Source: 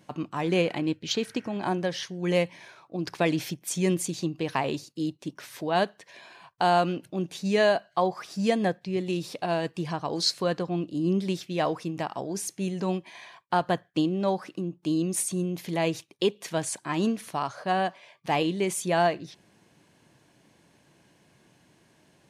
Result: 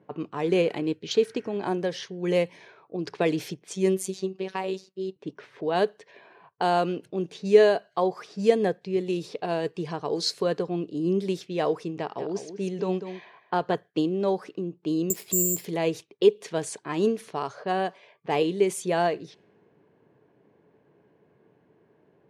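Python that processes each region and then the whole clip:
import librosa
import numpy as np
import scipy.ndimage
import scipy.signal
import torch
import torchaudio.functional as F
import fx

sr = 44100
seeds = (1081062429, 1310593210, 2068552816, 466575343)

y = fx.chain(x, sr, fx.high_shelf(hz=9800.0, db=5.5),
    fx.robotise(hz=189.0), at=(3.73, 5.16))
y = fx.chain(y, sr, fx.lowpass(hz=6400.0, slope=12),
    fx.echo_single(ms=196, db=-10.0), at=(11.98, 13.75))
y = fx.chain(y, sr, fx.resample_bad(factor=6, down='filtered', up='zero_stuff'),
    fx.band_squash(depth_pct=40), at=(15.1, 15.65))
y = scipy.signal.sosfilt(scipy.signal.butter(2, 88.0, 'highpass', fs=sr, output='sos'), y)
y = fx.env_lowpass(y, sr, base_hz=1400.0, full_db=-24.5)
y = fx.peak_eq(y, sr, hz=430.0, db=13.5, octaves=0.36)
y = F.gain(torch.from_numpy(y), -2.5).numpy()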